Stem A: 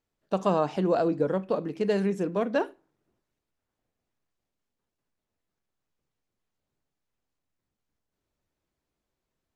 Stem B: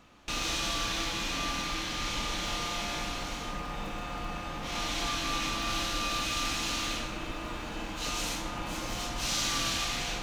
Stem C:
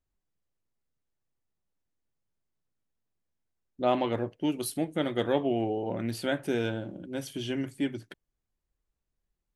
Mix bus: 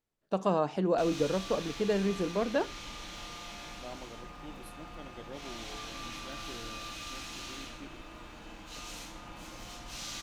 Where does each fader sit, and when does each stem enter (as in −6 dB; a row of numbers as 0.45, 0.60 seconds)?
−3.5, −10.5, −19.5 decibels; 0.00, 0.70, 0.00 seconds